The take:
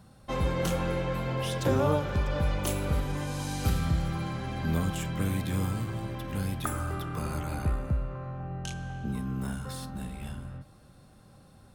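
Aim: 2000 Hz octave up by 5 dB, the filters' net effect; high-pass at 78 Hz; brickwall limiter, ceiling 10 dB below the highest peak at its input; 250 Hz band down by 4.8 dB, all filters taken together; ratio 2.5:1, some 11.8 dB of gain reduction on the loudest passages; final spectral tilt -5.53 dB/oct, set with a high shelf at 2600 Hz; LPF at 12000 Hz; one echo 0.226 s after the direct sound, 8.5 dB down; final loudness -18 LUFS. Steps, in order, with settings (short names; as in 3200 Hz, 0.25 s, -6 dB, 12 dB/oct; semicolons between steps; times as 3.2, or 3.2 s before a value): HPF 78 Hz; LPF 12000 Hz; bell 250 Hz -7.5 dB; bell 2000 Hz +8.5 dB; high shelf 2600 Hz -4 dB; compressor 2.5:1, threshold -41 dBFS; limiter -32.5 dBFS; echo 0.226 s -8.5 dB; gain +24 dB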